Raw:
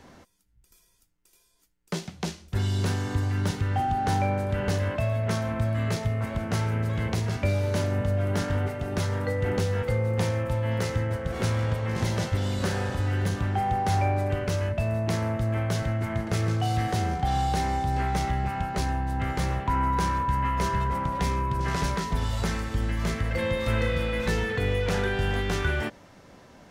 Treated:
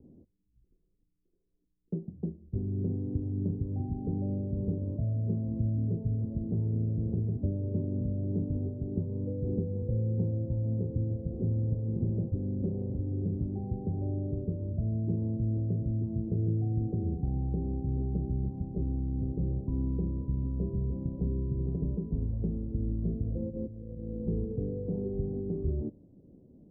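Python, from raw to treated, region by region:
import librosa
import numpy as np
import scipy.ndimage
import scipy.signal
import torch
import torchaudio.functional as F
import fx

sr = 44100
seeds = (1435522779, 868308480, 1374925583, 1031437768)

y = fx.chain(x, sr, fx.median_filter(points=25),
    fx.over_compress(threshold_db=-30.0, ratio=-0.5),
    fx.low_shelf(hz=150.0, db=-4.5), at=(23.49, 24.21))
y = scipy.signal.sosfilt(scipy.signal.cheby2(4, 70, 1700.0, 'lowpass', fs=sr, output='sos'), y)
y = fx.low_shelf(y, sr, hz=130.0, db=-4.0)
y = fx.hum_notches(y, sr, base_hz=50, count=2)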